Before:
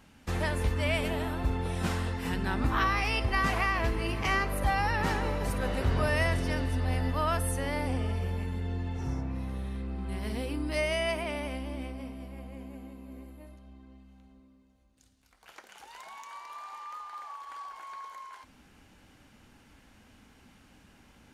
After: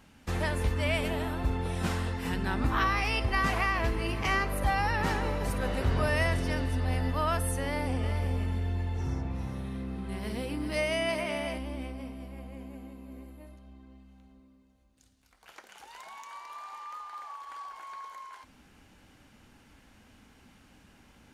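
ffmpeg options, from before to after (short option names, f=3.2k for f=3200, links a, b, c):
-filter_complex "[0:a]asettb=1/sr,asplit=3[a][b][c];[a]atrim=end=7.644[d];[b]atrim=start=7.64:end=11.58,asetpts=PTS-STARTPTS,afade=t=in:d=0.004:c=qsin,afade=t=out:st=3.936:d=0.004:c=qsin,aecho=1:1:391:0.398,atrim=end_sample=173754[e];[c]atrim=start=11.576[f];[d][e]acrossfade=d=0.004:c1=hsin:c2=qsin[g];[g][f]acrossfade=d=0.004:c1=qsin:c2=hsin"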